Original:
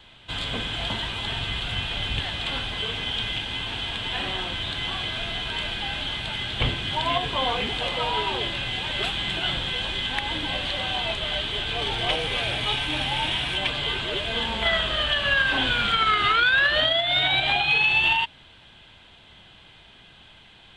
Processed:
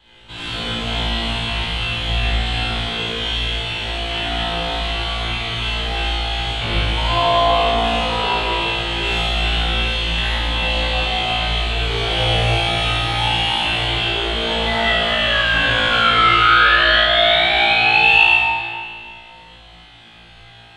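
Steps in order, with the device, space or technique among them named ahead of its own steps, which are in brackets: tunnel (flutter echo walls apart 3 m, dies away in 1.1 s; reverb RT60 1.9 s, pre-delay 50 ms, DRR -6.5 dB); gain -6 dB

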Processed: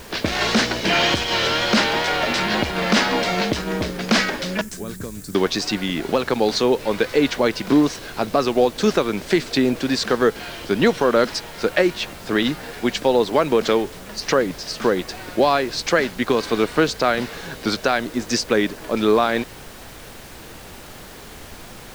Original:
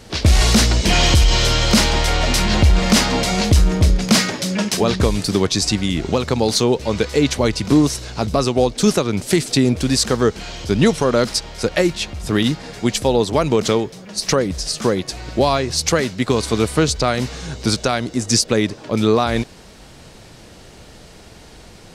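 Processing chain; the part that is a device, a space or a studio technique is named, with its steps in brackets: horn gramophone (BPF 250–3900 Hz; bell 1600 Hz +5 dB 0.32 oct; wow and flutter; pink noise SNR 19 dB); 4.61–5.35 EQ curve 100 Hz 0 dB, 820 Hz -21 dB, 1500 Hz -14 dB, 2900 Hz -20 dB, 4900 Hz -13 dB, 7500 Hz +4 dB

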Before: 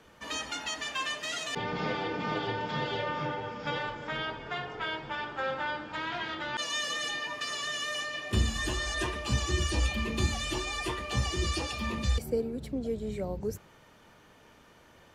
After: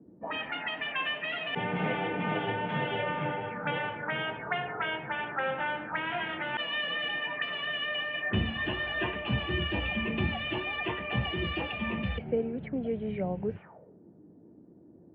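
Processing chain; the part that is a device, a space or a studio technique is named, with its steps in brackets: envelope filter bass rig (envelope low-pass 260–3000 Hz up, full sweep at -32.5 dBFS; speaker cabinet 82–2300 Hz, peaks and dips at 180 Hz +7 dB, 710 Hz +5 dB, 1200 Hz -4 dB)

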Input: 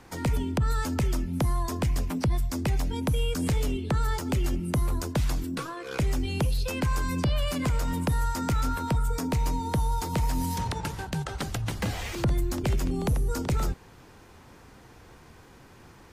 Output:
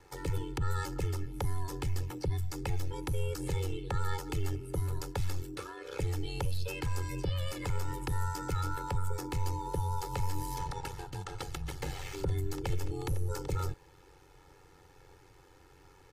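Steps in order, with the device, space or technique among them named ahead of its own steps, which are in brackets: ring-modulated robot voice (ring modulator 46 Hz; comb 2.3 ms, depth 94%); gain -7 dB

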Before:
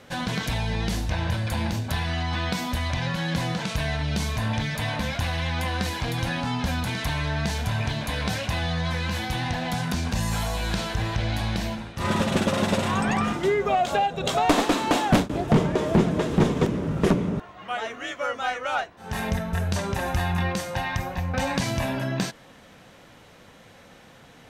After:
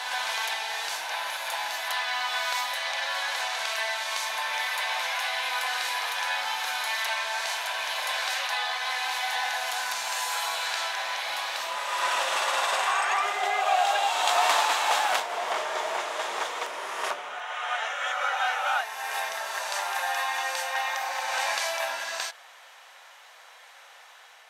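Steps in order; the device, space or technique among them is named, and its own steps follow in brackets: ghost voice (reverse; reverb RT60 3.0 s, pre-delay 25 ms, DRR -0.5 dB; reverse; HPF 750 Hz 24 dB/oct)

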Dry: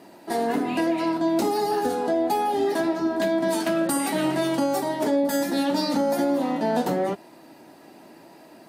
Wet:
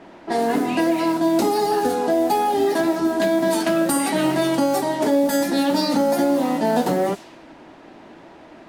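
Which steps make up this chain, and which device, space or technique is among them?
cassette deck with a dynamic noise filter (white noise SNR 22 dB; low-pass opened by the level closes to 1600 Hz, open at -20 dBFS); gain +4 dB

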